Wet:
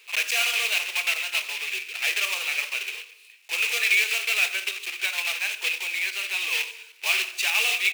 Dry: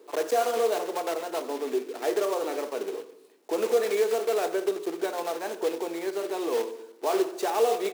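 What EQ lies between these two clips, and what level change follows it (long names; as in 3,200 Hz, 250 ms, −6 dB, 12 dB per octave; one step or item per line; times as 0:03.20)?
high-pass with resonance 2,500 Hz, resonance Q 6.9
+8.5 dB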